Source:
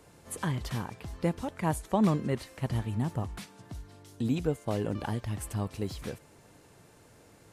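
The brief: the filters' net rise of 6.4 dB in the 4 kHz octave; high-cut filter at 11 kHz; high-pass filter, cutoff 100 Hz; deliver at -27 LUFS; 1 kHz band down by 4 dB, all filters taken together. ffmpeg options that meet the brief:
-af "highpass=100,lowpass=11000,equalizer=f=1000:t=o:g=-5.5,equalizer=f=4000:t=o:g=8.5,volume=2.11"

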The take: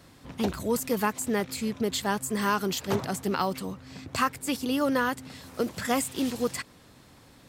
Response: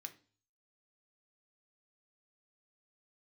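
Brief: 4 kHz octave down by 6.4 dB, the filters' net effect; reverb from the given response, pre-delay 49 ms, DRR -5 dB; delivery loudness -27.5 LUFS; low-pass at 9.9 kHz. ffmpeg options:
-filter_complex "[0:a]lowpass=9900,equalizer=f=4000:t=o:g=-8.5,asplit=2[s0][s1];[1:a]atrim=start_sample=2205,adelay=49[s2];[s1][s2]afir=irnorm=-1:irlink=0,volume=2.99[s3];[s0][s3]amix=inputs=2:normalize=0,volume=0.75"

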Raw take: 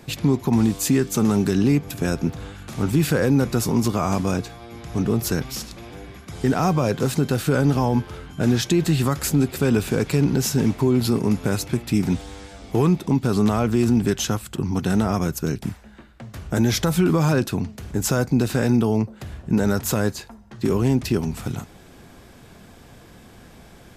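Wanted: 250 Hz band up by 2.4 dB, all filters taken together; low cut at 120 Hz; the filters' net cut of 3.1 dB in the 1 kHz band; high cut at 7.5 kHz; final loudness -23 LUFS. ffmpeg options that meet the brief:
-af "highpass=120,lowpass=7500,equalizer=f=250:t=o:g=3.5,equalizer=f=1000:t=o:g=-4.5,volume=0.75"

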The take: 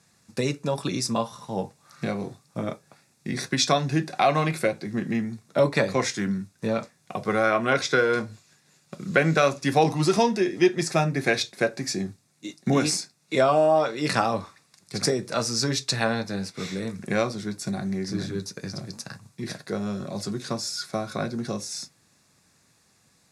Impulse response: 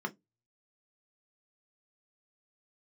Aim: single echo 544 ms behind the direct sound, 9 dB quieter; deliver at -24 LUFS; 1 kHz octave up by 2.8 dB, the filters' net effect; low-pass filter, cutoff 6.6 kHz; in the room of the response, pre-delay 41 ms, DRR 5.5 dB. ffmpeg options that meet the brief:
-filter_complex "[0:a]lowpass=6600,equalizer=f=1000:t=o:g=4,aecho=1:1:544:0.355,asplit=2[s0][s1];[1:a]atrim=start_sample=2205,adelay=41[s2];[s1][s2]afir=irnorm=-1:irlink=0,volume=0.335[s3];[s0][s3]amix=inputs=2:normalize=0,volume=0.891"

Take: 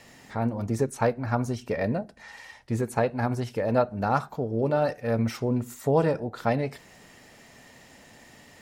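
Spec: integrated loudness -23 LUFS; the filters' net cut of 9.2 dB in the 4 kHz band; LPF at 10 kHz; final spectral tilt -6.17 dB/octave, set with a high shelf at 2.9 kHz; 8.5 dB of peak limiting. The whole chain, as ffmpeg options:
-af "lowpass=10000,highshelf=f=2900:g=-6.5,equalizer=f=4000:t=o:g=-6.5,volume=2.24,alimiter=limit=0.251:level=0:latency=1"

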